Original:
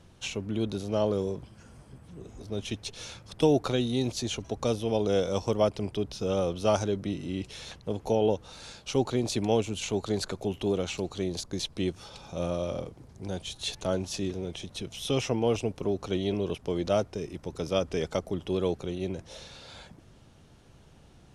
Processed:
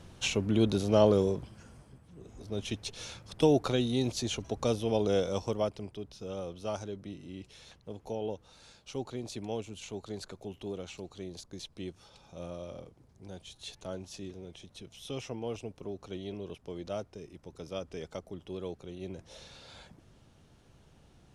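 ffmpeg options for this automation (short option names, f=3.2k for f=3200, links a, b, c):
-af "volume=17dB,afade=t=out:st=1.08:d=0.97:silence=0.251189,afade=t=in:st=2.05:d=0.56:silence=0.473151,afade=t=out:st=5.05:d=0.9:silence=0.334965,afade=t=in:st=18.85:d=0.64:silence=0.473151"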